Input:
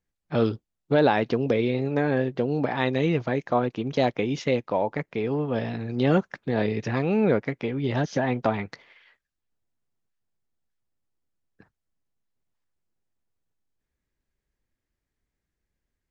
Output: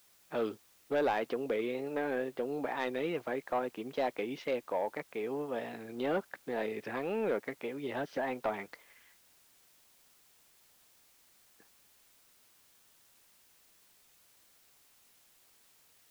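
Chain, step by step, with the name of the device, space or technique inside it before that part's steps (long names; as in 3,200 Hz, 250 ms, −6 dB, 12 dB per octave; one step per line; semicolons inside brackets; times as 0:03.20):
tape answering machine (band-pass filter 340–3,300 Hz; soft clipping −16.5 dBFS, distortion −17 dB; tape wow and flutter; white noise bed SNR 27 dB)
level −6.5 dB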